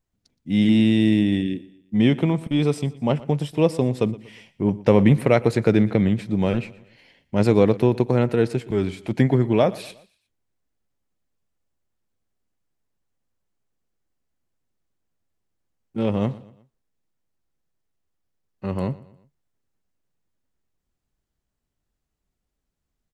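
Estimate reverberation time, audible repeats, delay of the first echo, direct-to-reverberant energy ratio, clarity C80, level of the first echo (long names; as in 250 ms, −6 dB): no reverb audible, 3, 119 ms, no reverb audible, no reverb audible, −20.0 dB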